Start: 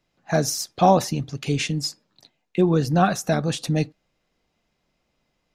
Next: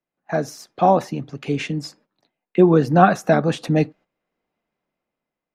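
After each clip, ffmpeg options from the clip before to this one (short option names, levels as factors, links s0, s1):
-filter_complex "[0:a]agate=range=0.251:threshold=0.00447:ratio=16:detection=peak,acrossover=split=170 2500:gain=0.251 1 0.2[s0][s1][s2];[s0][s1][s2]amix=inputs=3:normalize=0,dynaudnorm=f=240:g=9:m=3.76"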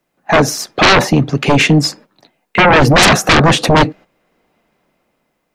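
-af "aeval=exprs='0.891*sin(PI/2*7.94*val(0)/0.891)':c=same,volume=0.668"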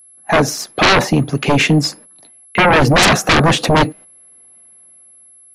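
-af "aeval=exprs='val(0)+0.01*sin(2*PI*11000*n/s)':c=same,volume=0.75"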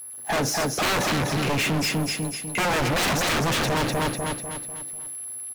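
-filter_complex "[0:a]aeval=exprs='val(0)+0.5*0.0282*sgn(val(0))':c=same,asplit=2[s0][s1];[s1]aecho=0:1:248|496|744|992|1240:0.501|0.216|0.0927|0.0398|0.0171[s2];[s0][s2]amix=inputs=2:normalize=0,asoftclip=type=hard:threshold=0.133,volume=0.596"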